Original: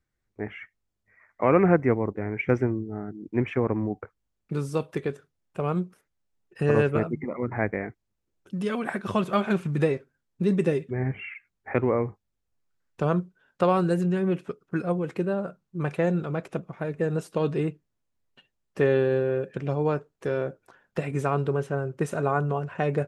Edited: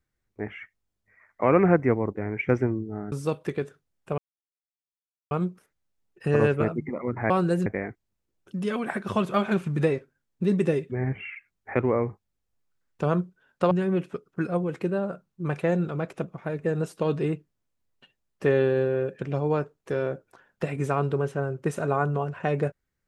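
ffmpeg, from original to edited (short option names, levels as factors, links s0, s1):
-filter_complex "[0:a]asplit=6[s0][s1][s2][s3][s4][s5];[s0]atrim=end=3.122[s6];[s1]atrim=start=4.598:end=5.66,asetpts=PTS-STARTPTS,afade=t=out:st=1.058:d=0.004:c=hsin,apad=pad_dur=1.13[s7];[s2]atrim=start=5.66:end=7.652,asetpts=PTS-STARTPTS,afade=t=in:d=0.004:c=hsin[s8];[s3]atrim=start=13.698:end=14.062[s9];[s4]atrim=start=7.648:end=13.702[s10];[s5]atrim=start=14.058[s11];[s7][s8]concat=n=2:v=0:a=1[s12];[s6][s12]acrossfade=d=0.004:c1=hsin:c2=hsin[s13];[s13][s9]acrossfade=d=0.004:c1=hsin:c2=hsin[s14];[s14][s10]acrossfade=d=0.004:c1=hsin:c2=hsin[s15];[s15][s11]acrossfade=d=0.004:c1=hsin:c2=hsin"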